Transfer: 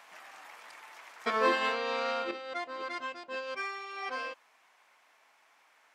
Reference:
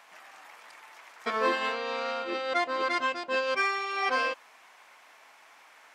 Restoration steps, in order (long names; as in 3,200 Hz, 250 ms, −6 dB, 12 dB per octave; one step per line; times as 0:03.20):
level 0 dB, from 0:02.31 +9.5 dB